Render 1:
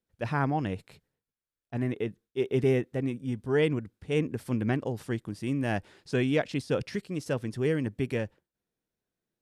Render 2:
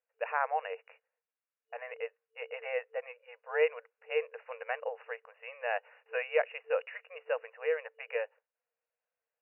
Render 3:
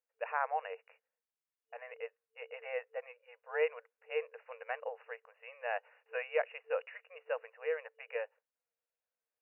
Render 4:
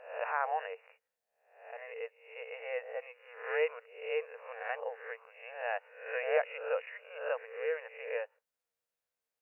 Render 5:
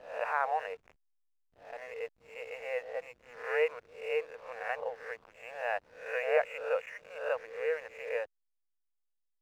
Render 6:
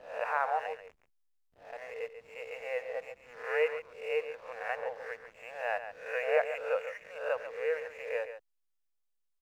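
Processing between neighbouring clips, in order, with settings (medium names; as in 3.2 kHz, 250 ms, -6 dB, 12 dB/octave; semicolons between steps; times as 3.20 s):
FFT band-pass 450–2900 Hz
dynamic bell 990 Hz, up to +3 dB, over -39 dBFS, Q 0.71; trim -5.5 dB
reverse spectral sustain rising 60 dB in 0.60 s
hysteresis with a dead band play -51.5 dBFS; trim +2 dB
delay 139 ms -10.5 dB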